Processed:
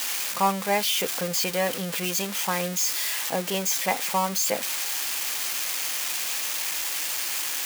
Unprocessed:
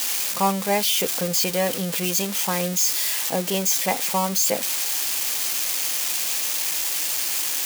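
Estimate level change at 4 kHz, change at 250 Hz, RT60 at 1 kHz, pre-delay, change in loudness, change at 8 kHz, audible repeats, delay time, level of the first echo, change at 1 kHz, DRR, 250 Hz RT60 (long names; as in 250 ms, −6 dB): −2.5 dB, −4.5 dB, no reverb audible, no reverb audible, −4.0 dB, −4.5 dB, no echo audible, no echo audible, no echo audible, −0.5 dB, no reverb audible, no reverb audible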